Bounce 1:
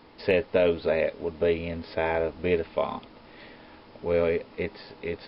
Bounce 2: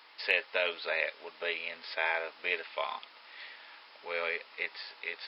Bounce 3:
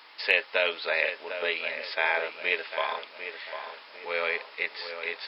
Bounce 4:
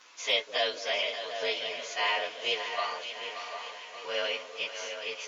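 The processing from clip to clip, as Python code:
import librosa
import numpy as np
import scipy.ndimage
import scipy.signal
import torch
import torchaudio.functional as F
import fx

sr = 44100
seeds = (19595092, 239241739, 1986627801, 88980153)

y1 = scipy.signal.sosfilt(scipy.signal.butter(2, 1400.0, 'highpass', fs=sr, output='sos'), x)
y1 = F.gain(torch.from_numpy(y1), 4.0).numpy()
y2 = fx.echo_tape(y1, sr, ms=749, feedback_pct=48, wet_db=-8, lp_hz=2200.0, drive_db=5.0, wow_cents=6)
y2 = F.gain(torch.from_numpy(y2), 5.0).numpy()
y3 = fx.partial_stretch(y2, sr, pct=110)
y3 = fx.echo_split(y3, sr, split_hz=560.0, low_ms=198, high_ms=580, feedback_pct=52, wet_db=-9.5)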